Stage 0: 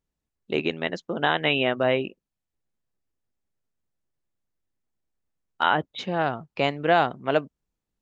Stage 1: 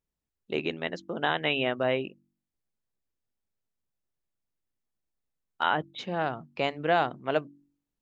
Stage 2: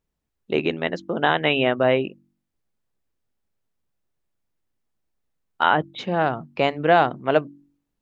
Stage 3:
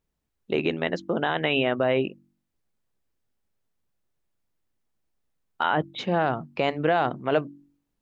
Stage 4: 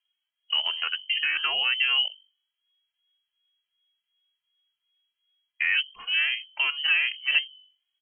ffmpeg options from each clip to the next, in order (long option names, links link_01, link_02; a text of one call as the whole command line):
ffmpeg -i in.wav -af "bandreject=frequency=47.42:width_type=h:width=4,bandreject=frequency=94.84:width_type=h:width=4,bandreject=frequency=142.26:width_type=h:width=4,bandreject=frequency=189.68:width_type=h:width=4,bandreject=frequency=237.1:width_type=h:width=4,bandreject=frequency=284.52:width_type=h:width=4,bandreject=frequency=331.94:width_type=h:width=4,volume=-4.5dB" out.wav
ffmpeg -i in.wav -af "highshelf=frequency=3000:gain=-6.5,volume=8.5dB" out.wav
ffmpeg -i in.wav -af "alimiter=limit=-12dB:level=0:latency=1:release=24" out.wav
ffmpeg -i in.wav -filter_complex "[0:a]lowpass=frequency=2800:width_type=q:width=0.5098,lowpass=frequency=2800:width_type=q:width=0.6013,lowpass=frequency=2800:width_type=q:width=0.9,lowpass=frequency=2800:width_type=q:width=2.563,afreqshift=-3300,equalizer=frequency=125:width_type=o:width=1:gain=-9,equalizer=frequency=250:width_type=o:width=1:gain=-11,equalizer=frequency=500:width_type=o:width=1:gain=-8,equalizer=frequency=2000:width_type=o:width=1:gain=4,asplit=2[link_01][link_02];[link_02]adelay=2.5,afreqshift=2.7[link_03];[link_01][link_03]amix=inputs=2:normalize=1" out.wav